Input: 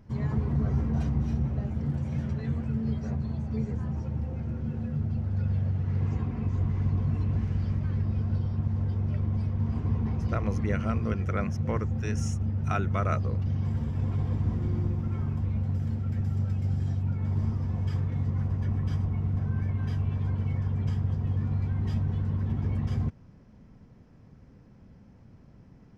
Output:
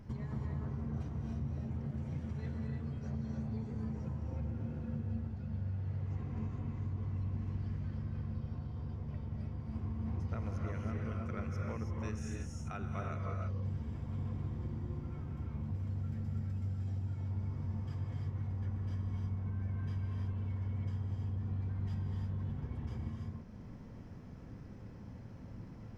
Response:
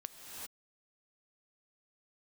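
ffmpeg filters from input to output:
-filter_complex "[0:a]acompressor=threshold=-39dB:ratio=12[link_01];[1:a]atrim=start_sample=2205,asetrate=52920,aresample=44100[link_02];[link_01][link_02]afir=irnorm=-1:irlink=0,volume=8dB"

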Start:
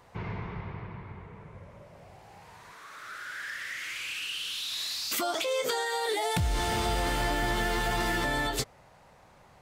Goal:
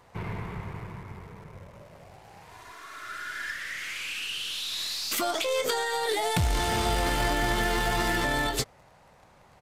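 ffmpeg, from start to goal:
ffmpeg -i in.wav -filter_complex "[0:a]asettb=1/sr,asplit=3[link_01][link_02][link_03];[link_01]atrim=end=2.514[link_04];[link_02]atrim=start=2.51:end=3.52,asetpts=PTS-STARTPTS,afade=type=in:duration=0.004:curve=qsin,afade=type=out:start_time=1.006:duration=0.004:curve=qsin,aecho=1:1:2.9:0.71,atrim=end_sample=44541[link_05];[link_03]atrim=start=3.516[link_06];[link_04][link_05]acrossfade=duration=0.004:curve1=hsin:curve2=qsin[link_07];[link_07][link_06]acrossfade=duration=0.004:curve1=qsin:curve2=hsin,asplit=2[link_08][link_09];[link_09]acrusher=bits=5:dc=4:mix=0:aa=0.000001,volume=-9dB[link_10];[link_08][link_10]amix=inputs=2:normalize=0,aresample=32000,aresample=44100" out.wav

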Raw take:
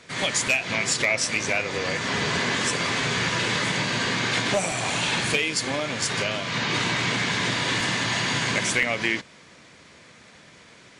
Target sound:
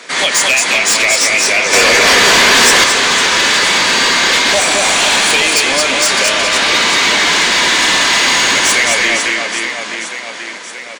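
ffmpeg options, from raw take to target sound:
ffmpeg -i in.wav -filter_complex "[0:a]highpass=frequency=200:width=0.5412,highpass=frequency=200:width=1.3066,asplit=2[link_01][link_02];[link_02]alimiter=limit=-17dB:level=0:latency=1:release=292,volume=0.5dB[link_03];[link_01][link_03]amix=inputs=2:normalize=0,aecho=1:1:220|506|877.8|1361|1989:0.631|0.398|0.251|0.158|0.1,acrossover=split=2900[link_04][link_05];[link_04]asplit=2[link_06][link_07];[link_07]highpass=frequency=720:poles=1,volume=19dB,asoftclip=type=tanh:threshold=-5dB[link_08];[link_06][link_08]amix=inputs=2:normalize=0,lowpass=frequency=2300:poles=1,volume=-6dB[link_09];[link_05]aeval=exprs='0.447*sin(PI/2*2.51*val(0)/0.447)':channel_layout=same[link_10];[link_09][link_10]amix=inputs=2:normalize=0,asettb=1/sr,asplit=3[link_11][link_12][link_13];[link_11]atrim=end=1.734[link_14];[link_12]atrim=start=1.73:end=2.84,asetpts=PTS-STARTPTS,afade=type=in:duration=0.004:curve=qsin,afade=type=out:start_time=1.106:duration=0.004:curve=qsin,acontrast=64[link_15];[link_13]atrim=start=2.836[link_16];[link_14][link_15]acrossfade=duration=0.004:curve1=hsin:curve2=qsin[link_17];[link_17][link_16]acrossfade=duration=0.004:curve1=qsin:curve2=hsin,volume=-1dB" out.wav

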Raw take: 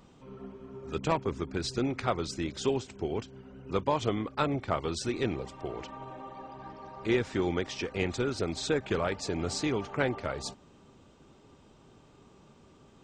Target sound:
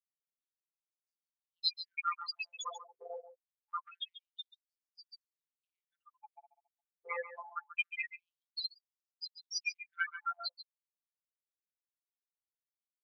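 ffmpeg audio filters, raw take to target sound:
ffmpeg -i in.wav -filter_complex "[0:a]asplit=2[link_01][link_02];[link_02]aeval=exprs='(mod(12.6*val(0)+1,2)-1)/12.6':channel_layout=same,volume=-3.5dB[link_03];[link_01][link_03]amix=inputs=2:normalize=0,afftfilt=real='re*gte(hypot(re,im),0.1)':imag='im*gte(hypot(re,im),0.1)':win_size=1024:overlap=0.75,agate=range=-33dB:threshold=-45dB:ratio=3:detection=peak,tiltshelf=frequency=1100:gain=-9.5,bandreject=frequency=5100:width=5.4,acompressor=threshold=-37dB:ratio=3,afftfilt=real='hypot(re,im)*cos(PI*b)':imag='0':win_size=1024:overlap=0.75,highpass=frequency=110:width=0.5412,highpass=frequency=110:width=1.3066,asplit=2[link_04][link_05];[link_05]aecho=0:1:138:0.251[link_06];[link_04][link_06]amix=inputs=2:normalize=0,afftfilt=real='re*gte(b*sr/1024,410*pow(4700/410,0.5+0.5*sin(2*PI*0.25*pts/sr)))':imag='im*gte(b*sr/1024,410*pow(4700/410,0.5+0.5*sin(2*PI*0.25*pts/sr)))':win_size=1024:overlap=0.75,volume=9.5dB" out.wav

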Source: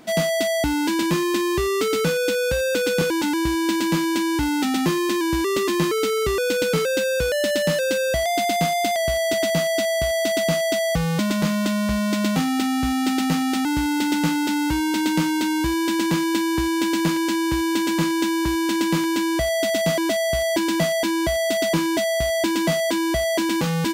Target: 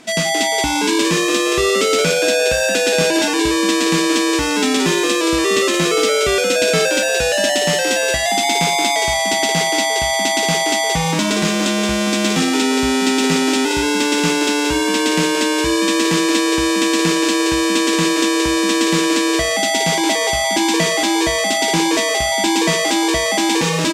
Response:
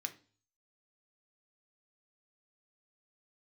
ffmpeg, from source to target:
-filter_complex "[0:a]lowpass=8300,asplit=5[link_01][link_02][link_03][link_04][link_05];[link_02]adelay=174,afreqshift=140,volume=-5dB[link_06];[link_03]adelay=348,afreqshift=280,volume=-13.9dB[link_07];[link_04]adelay=522,afreqshift=420,volume=-22.7dB[link_08];[link_05]adelay=696,afreqshift=560,volume=-31.6dB[link_09];[link_01][link_06][link_07][link_08][link_09]amix=inputs=5:normalize=0,asplit=2[link_10][link_11];[1:a]atrim=start_sample=2205,highshelf=frequency=2100:gain=11[link_12];[link_11][link_12]afir=irnorm=-1:irlink=0,volume=-1dB[link_13];[link_10][link_13]amix=inputs=2:normalize=0"

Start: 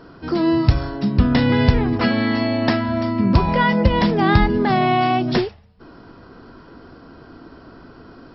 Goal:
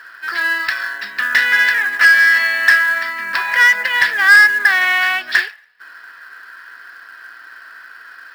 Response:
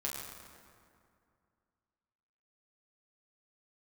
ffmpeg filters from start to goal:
-af "highpass=frequency=1700:width_type=q:width=12,acrusher=bits=5:mode=log:mix=0:aa=0.000001,acontrast=76,volume=-2.5dB"

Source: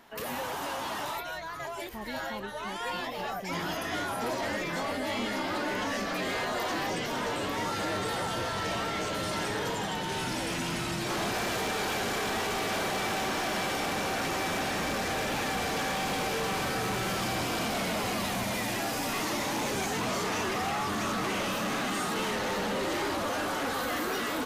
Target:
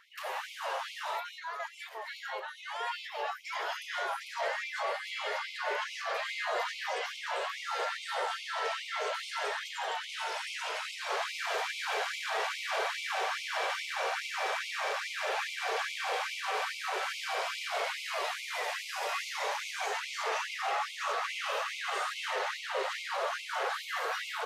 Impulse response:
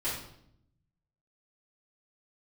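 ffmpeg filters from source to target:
-filter_complex "[0:a]aemphasis=mode=reproduction:type=50fm,asplit=2[link_01][link_02];[1:a]atrim=start_sample=2205,asetrate=52920,aresample=44100[link_03];[link_02][link_03]afir=irnorm=-1:irlink=0,volume=-16dB[link_04];[link_01][link_04]amix=inputs=2:normalize=0,afftfilt=real='re*gte(b*sr/1024,380*pow(2100/380,0.5+0.5*sin(2*PI*2.4*pts/sr)))':imag='im*gte(b*sr/1024,380*pow(2100/380,0.5+0.5*sin(2*PI*2.4*pts/sr)))':win_size=1024:overlap=0.75"

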